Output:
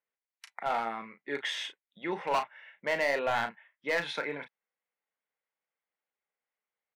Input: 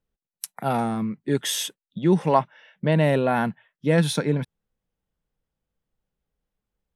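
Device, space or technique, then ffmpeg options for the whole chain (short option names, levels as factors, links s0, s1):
megaphone: -filter_complex "[0:a]highpass=700,lowpass=2700,equalizer=f=2100:t=o:w=0.36:g=9,asoftclip=type=hard:threshold=0.0944,asplit=2[s0][s1];[s1]adelay=35,volume=0.355[s2];[s0][s2]amix=inputs=2:normalize=0,volume=0.75"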